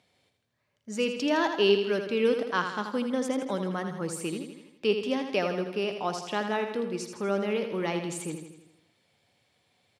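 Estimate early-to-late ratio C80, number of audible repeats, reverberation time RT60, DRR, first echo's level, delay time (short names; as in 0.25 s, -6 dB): none, 6, none, none, -7.5 dB, 81 ms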